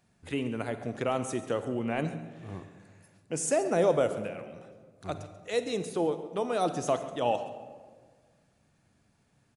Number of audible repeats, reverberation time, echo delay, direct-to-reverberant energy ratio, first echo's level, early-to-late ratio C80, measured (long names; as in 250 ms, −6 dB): 1, 1.6 s, 138 ms, 9.5 dB, −16.5 dB, 11.0 dB